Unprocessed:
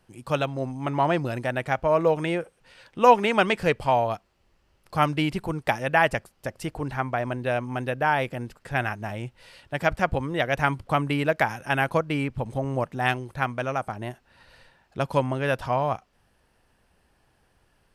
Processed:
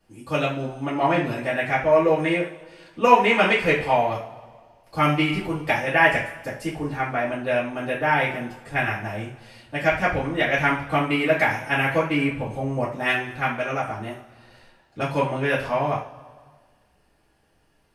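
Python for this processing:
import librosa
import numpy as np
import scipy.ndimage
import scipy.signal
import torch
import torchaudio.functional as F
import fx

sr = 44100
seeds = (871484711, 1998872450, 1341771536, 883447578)

y = fx.rev_double_slope(x, sr, seeds[0], early_s=0.35, late_s=1.7, knee_db=-18, drr_db=-9.5)
y = fx.dynamic_eq(y, sr, hz=2100.0, q=1.8, threshold_db=-33.0, ratio=4.0, max_db=7)
y = y * librosa.db_to_amplitude(-9.0)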